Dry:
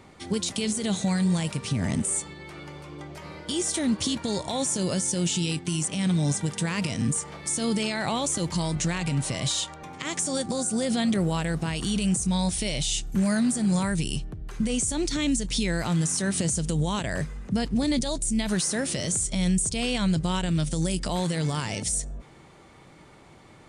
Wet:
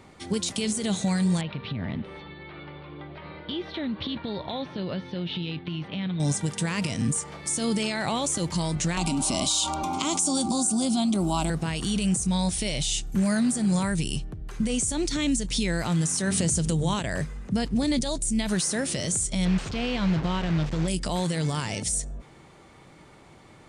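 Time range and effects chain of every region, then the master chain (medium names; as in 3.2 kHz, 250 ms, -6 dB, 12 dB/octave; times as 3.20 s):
1.41–6.20 s: elliptic low-pass 3.9 kHz, stop band 50 dB + compression 4:1, threshold -27 dBFS
8.97–11.50 s: static phaser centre 480 Hz, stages 6 + level flattener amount 70%
16.27–16.94 s: peaking EQ 70 Hz +4.5 dB 1.9 oct + hum notches 50/100/150/200/250/300/350/400 Hz + level flattener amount 50%
19.45–20.88 s: one-bit delta coder 64 kbps, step -25.5 dBFS + distance through air 190 m
whole clip: none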